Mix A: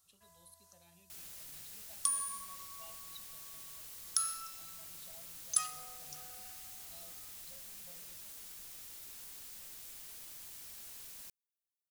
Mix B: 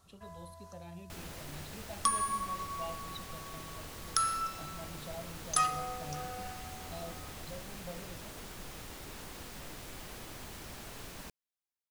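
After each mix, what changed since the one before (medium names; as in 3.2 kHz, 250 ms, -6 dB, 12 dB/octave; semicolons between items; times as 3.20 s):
master: remove pre-emphasis filter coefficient 0.9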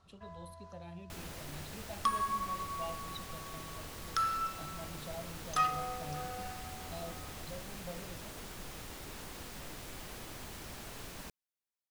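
second sound: add low-pass 3.9 kHz 12 dB/octave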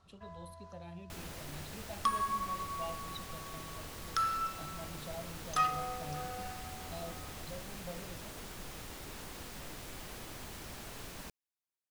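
no change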